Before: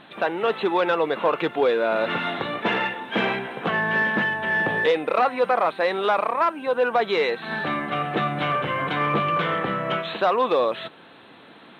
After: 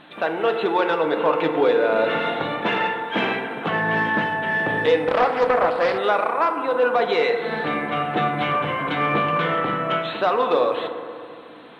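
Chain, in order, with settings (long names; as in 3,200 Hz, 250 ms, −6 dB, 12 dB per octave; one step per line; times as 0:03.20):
feedback delay network reverb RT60 2.4 s, low-frequency decay 0.95×, high-frequency decay 0.3×, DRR 4.5 dB
0:05.08–0:05.98: highs frequency-modulated by the lows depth 0.32 ms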